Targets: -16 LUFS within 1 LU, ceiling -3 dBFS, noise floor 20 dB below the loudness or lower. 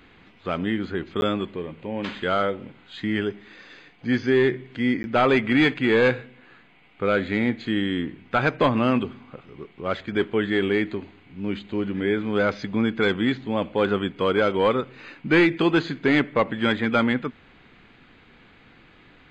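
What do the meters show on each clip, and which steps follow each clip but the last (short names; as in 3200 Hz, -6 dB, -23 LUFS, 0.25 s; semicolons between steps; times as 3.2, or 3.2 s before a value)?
dropouts 2; longest dropout 11 ms; loudness -23.5 LUFS; peak -9.5 dBFS; loudness target -16.0 LUFS
-> interpolate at 1.21/5.03, 11 ms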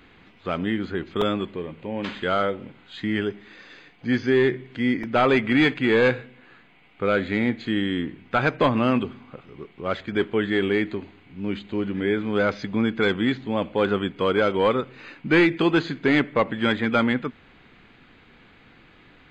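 dropouts 0; loudness -23.5 LUFS; peak -9.5 dBFS; loudness target -16.0 LUFS
-> gain +7.5 dB; limiter -3 dBFS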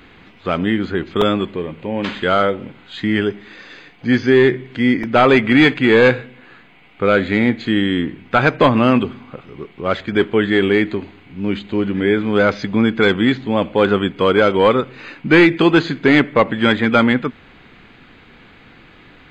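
loudness -16.0 LUFS; peak -3.0 dBFS; noise floor -46 dBFS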